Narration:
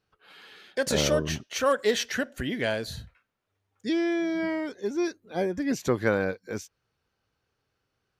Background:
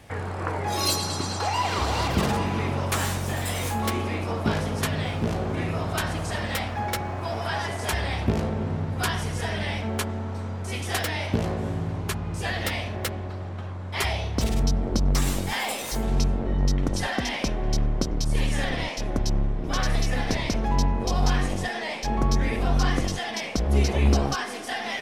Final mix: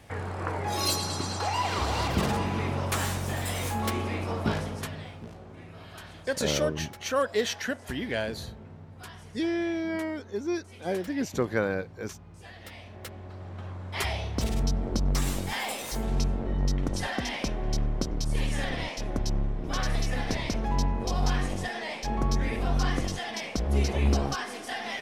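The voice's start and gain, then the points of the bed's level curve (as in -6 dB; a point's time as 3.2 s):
5.50 s, -2.5 dB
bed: 4.5 s -3 dB
5.34 s -18.5 dB
12.59 s -18.5 dB
13.68 s -4 dB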